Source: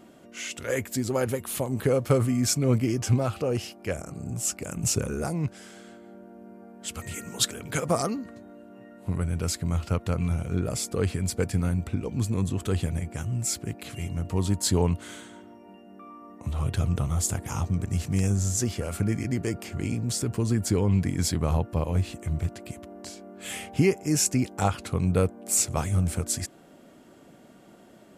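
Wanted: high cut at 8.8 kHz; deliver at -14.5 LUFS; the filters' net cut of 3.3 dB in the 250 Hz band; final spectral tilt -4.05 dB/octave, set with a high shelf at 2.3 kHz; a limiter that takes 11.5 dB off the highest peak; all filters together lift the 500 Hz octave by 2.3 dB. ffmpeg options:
-af "lowpass=8800,equalizer=f=250:t=o:g=-6,equalizer=f=500:t=o:g=4,highshelf=f=2300:g=9,volume=4.47,alimiter=limit=0.794:level=0:latency=1"

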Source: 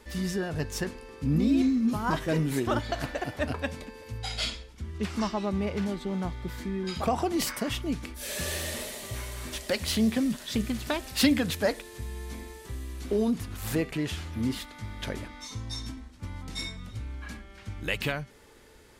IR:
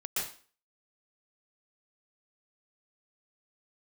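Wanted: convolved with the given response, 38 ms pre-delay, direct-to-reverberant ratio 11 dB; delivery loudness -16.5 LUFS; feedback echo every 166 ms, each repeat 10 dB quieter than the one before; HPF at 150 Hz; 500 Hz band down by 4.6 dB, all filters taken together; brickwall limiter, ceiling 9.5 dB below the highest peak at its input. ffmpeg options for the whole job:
-filter_complex "[0:a]highpass=150,equalizer=f=500:t=o:g=-6,alimiter=limit=0.0794:level=0:latency=1,aecho=1:1:166|332|498|664:0.316|0.101|0.0324|0.0104,asplit=2[s0][s1];[1:a]atrim=start_sample=2205,adelay=38[s2];[s1][s2]afir=irnorm=-1:irlink=0,volume=0.168[s3];[s0][s3]amix=inputs=2:normalize=0,volume=6.68"

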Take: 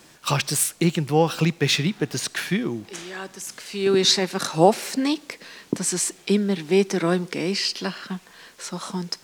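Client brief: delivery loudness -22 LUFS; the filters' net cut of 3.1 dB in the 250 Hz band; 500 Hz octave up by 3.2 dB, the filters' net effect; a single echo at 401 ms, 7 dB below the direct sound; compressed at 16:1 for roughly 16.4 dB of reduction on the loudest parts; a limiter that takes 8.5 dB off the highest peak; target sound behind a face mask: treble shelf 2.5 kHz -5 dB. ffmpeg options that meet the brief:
-af "equalizer=f=250:t=o:g=-8.5,equalizer=f=500:t=o:g=7.5,acompressor=threshold=0.0794:ratio=16,alimiter=limit=0.106:level=0:latency=1,highshelf=f=2500:g=-5,aecho=1:1:401:0.447,volume=2.99"

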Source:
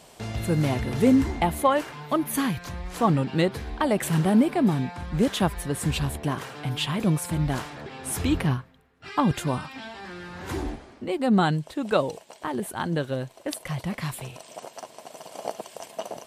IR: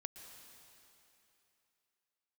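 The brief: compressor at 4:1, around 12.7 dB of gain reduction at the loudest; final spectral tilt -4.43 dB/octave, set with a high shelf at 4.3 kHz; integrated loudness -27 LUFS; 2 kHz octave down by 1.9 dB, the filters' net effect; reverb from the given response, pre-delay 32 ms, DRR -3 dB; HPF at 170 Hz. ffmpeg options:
-filter_complex "[0:a]highpass=170,equalizer=f=2000:t=o:g=-4,highshelf=f=4300:g=7,acompressor=threshold=0.0282:ratio=4,asplit=2[s0][s1];[1:a]atrim=start_sample=2205,adelay=32[s2];[s1][s2]afir=irnorm=-1:irlink=0,volume=2.24[s3];[s0][s3]amix=inputs=2:normalize=0,volume=1.41"

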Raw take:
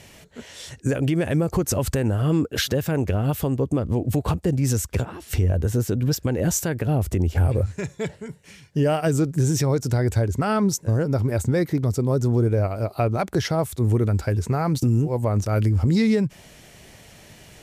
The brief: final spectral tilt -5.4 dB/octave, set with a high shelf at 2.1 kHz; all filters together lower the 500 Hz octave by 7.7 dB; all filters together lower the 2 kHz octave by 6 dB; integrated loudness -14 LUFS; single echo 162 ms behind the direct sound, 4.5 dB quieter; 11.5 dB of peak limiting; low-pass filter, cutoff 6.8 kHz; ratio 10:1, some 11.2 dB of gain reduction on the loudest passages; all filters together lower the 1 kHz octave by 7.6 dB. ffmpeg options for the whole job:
-af "lowpass=6800,equalizer=f=500:t=o:g=-8.5,equalizer=f=1000:t=o:g=-6.5,equalizer=f=2000:t=o:g=-8.5,highshelf=f=2100:g=6,acompressor=threshold=0.0398:ratio=10,alimiter=level_in=1.78:limit=0.0631:level=0:latency=1,volume=0.562,aecho=1:1:162:0.596,volume=13.3"

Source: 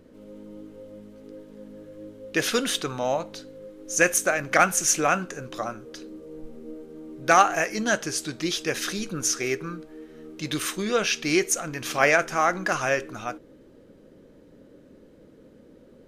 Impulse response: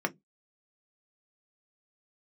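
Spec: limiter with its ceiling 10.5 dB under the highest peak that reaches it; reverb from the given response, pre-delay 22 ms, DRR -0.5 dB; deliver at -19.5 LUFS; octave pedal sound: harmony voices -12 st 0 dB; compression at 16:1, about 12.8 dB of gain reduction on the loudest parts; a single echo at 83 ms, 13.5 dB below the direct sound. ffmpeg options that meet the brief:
-filter_complex "[0:a]acompressor=threshold=0.0562:ratio=16,alimiter=limit=0.0631:level=0:latency=1,aecho=1:1:83:0.211,asplit=2[s0][s1];[1:a]atrim=start_sample=2205,adelay=22[s2];[s1][s2]afir=irnorm=-1:irlink=0,volume=0.447[s3];[s0][s3]amix=inputs=2:normalize=0,asplit=2[s4][s5];[s5]asetrate=22050,aresample=44100,atempo=2,volume=1[s6];[s4][s6]amix=inputs=2:normalize=0,volume=3.35"

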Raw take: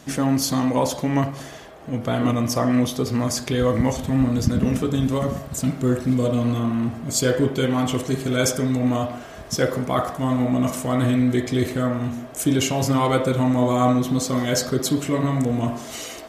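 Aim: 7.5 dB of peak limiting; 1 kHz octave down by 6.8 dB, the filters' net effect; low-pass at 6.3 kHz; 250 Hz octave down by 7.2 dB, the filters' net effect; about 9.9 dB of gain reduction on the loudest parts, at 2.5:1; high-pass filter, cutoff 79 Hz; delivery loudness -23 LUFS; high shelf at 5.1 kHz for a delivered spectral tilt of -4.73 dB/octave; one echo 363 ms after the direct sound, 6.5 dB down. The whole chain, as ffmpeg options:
-af "highpass=79,lowpass=6300,equalizer=f=250:t=o:g=-7.5,equalizer=f=1000:t=o:g=-9,highshelf=f=5100:g=7.5,acompressor=threshold=0.0224:ratio=2.5,alimiter=level_in=1.06:limit=0.0631:level=0:latency=1,volume=0.944,aecho=1:1:363:0.473,volume=3.55"

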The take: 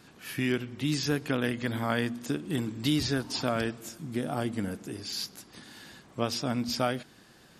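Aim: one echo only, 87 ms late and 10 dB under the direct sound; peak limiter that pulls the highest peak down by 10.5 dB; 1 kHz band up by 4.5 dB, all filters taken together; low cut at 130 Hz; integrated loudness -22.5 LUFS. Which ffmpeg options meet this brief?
-af "highpass=130,equalizer=f=1000:t=o:g=6.5,alimiter=limit=0.0891:level=0:latency=1,aecho=1:1:87:0.316,volume=3.16"

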